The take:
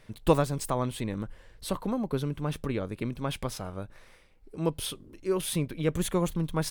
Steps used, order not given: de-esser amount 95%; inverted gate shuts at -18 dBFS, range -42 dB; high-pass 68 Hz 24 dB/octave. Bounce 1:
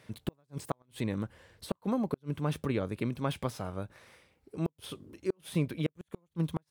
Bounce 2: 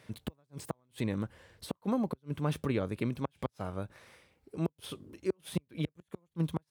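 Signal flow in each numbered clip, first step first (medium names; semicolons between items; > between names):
high-pass > de-esser > inverted gate; de-esser > inverted gate > high-pass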